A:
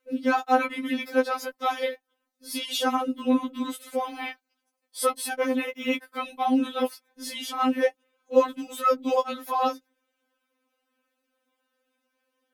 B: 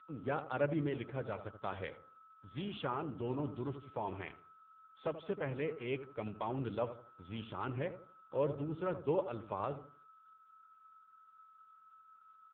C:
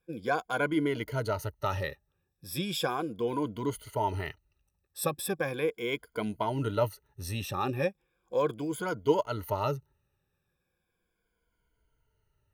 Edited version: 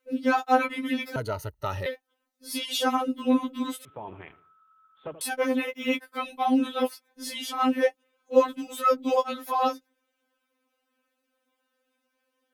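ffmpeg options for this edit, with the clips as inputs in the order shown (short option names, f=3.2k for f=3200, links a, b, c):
-filter_complex "[0:a]asplit=3[a][b][c];[a]atrim=end=1.162[d];[2:a]atrim=start=1.158:end=1.862[e];[b]atrim=start=1.858:end=3.852[f];[1:a]atrim=start=3.848:end=5.212[g];[c]atrim=start=5.208[h];[d][e]acrossfade=d=0.004:c1=hsin:c2=hsin[i];[i][f]acrossfade=d=0.004:c1=hsin:c2=hsin[j];[j][g]acrossfade=d=0.004:c1=hsin:c2=hsin[k];[k][h]acrossfade=d=0.004:c1=hsin:c2=hsin"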